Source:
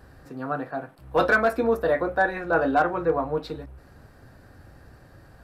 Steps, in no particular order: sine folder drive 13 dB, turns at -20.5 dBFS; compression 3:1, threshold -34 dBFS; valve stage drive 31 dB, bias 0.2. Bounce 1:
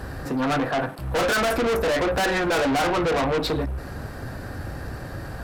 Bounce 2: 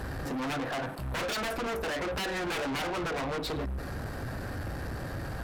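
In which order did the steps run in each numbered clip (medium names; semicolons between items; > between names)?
valve stage > compression > sine folder; compression > sine folder > valve stage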